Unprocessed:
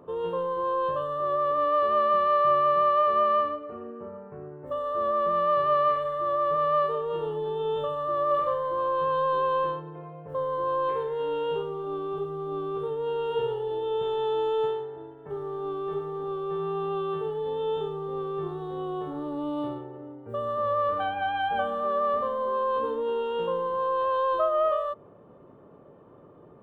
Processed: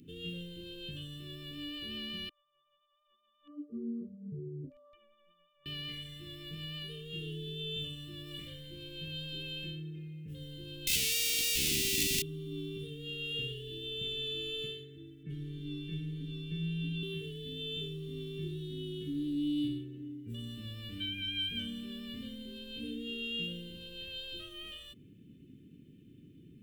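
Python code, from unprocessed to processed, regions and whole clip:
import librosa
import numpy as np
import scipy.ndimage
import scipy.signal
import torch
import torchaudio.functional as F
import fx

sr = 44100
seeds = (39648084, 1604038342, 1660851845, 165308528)

y = fx.chain(x, sr, fx.spec_expand(power=2.6),
    fx.over_compress(threshold_db=-30.0, ratio=-0.5), at=(2.29, 5.66))
y = fx.chain(y, sr, fx.peak_eq(hz=150.0, db=-5.0, octaves=2.4),
    fx.comb(ms=4.4, depth=0.45),
    fx.schmitt(flips_db=-44.0), at=(10.87, 12.22))
y = fx.chain(y, sr, fx.lowpass(hz=3000.0, slope=6),
    fx.comb(ms=6.3, depth=0.93), at=(15.23, 17.03))
y = scipy.signal.sosfilt(scipy.signal.cheby1(3, 1.0, [280.0, 2600.0], 'bandstop', fs=sr, output='sos'), y)
y = fx.high_shelf(y, sr, hz=2000.0, db=8.5)
y = y * 10.0 ** (2.0 / 20.0)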